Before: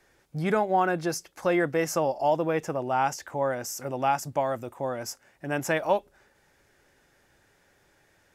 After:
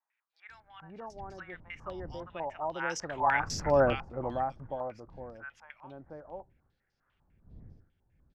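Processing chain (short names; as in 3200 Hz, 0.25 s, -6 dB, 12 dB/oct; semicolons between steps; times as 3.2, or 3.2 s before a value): wind noise 120 Hz -37 dBFS; Doppler pass-by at 3.37, 18 m/s, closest 2.3 m; bands offset in time highs, lows 0.49 s, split 1100 Hz; stepped low-pass 10 Hz 900–5100 Hz; gain +6 dB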